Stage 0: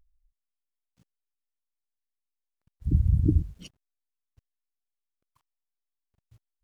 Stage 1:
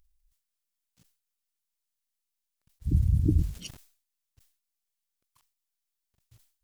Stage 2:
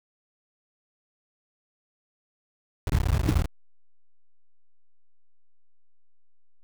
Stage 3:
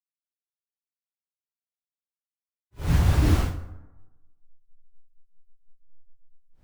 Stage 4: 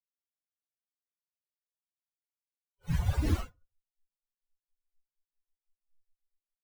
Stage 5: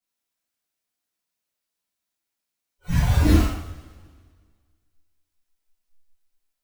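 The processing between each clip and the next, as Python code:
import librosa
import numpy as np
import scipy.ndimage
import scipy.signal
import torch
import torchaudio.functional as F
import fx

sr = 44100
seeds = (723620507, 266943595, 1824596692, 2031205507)

y1 = fx.high_shelf(x, sr, hz=2400.0, db=11.5)
y1 = fx.sustainer(y1, sr, db_per_s=120.0)
y1 = y1 * librosa.db_to_amplitude(-2.0)
y2 = fx.delta_hold(y1, sr, step_db=-23.5)
y3 = fx.phase_scramble(y2, sr, seeds[0], window_ms=200)
y3 = fx.rev_plate(y3, sr, seeds[1], rt60_s=1.1, hf_ratio=0.4, predelay_ms=100, drr_db=16.0)
y3 = y3 * librosa.db_to_amplitude(4.5)
y4 = fx.bin_expand(y3, sr, power=3.0)
y4 = y4 * librosa.db_to_amplitude(-3.5)
y5 = fx.rev_double_slope(y4, sr, seeds[2], early_s=0.62, late_s=1.8, knee_db=-16, drr_db=-9.5)
y5 = y5 * librosa.db_to_amplitude(2.5)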